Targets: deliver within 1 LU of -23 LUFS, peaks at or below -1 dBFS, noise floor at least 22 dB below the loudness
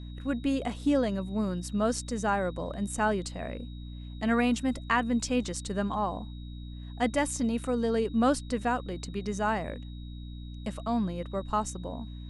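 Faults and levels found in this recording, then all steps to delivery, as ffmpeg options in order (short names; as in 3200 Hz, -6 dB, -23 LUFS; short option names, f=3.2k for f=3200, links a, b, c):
hum 60 Hz; harmonics up to 300 Hz; hum level -38 dBFS; steady tone 3800 Hz; tone level -55 dBFS; loudness -30.0 LUFS; peak -13.0 dBFS; loudness target -23.0 LUFS
-> -af "bandreject=f=60:t=h:w=4,bandreject=f=120:t=h:w=4,bandreject=f=180:t=h:w=4,bandreject=f=240:t=h:w=4,bandreject=f=300:t=h:w=4"
-af "bandreject=f=3.8k:w=30"
-af "volume=7dB"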